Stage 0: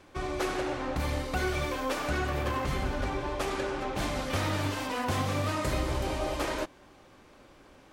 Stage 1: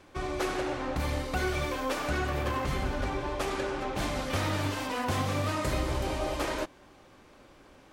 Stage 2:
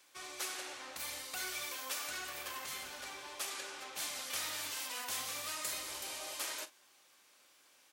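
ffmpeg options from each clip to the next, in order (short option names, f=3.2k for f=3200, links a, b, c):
-af anull
-filter_complex "[0:a]aderivative,asplit=2[a][b];[b]adelay=43,volume=-14dB[c];[a][c]amix=inputs=2:normalize=0,volume=3.5dB"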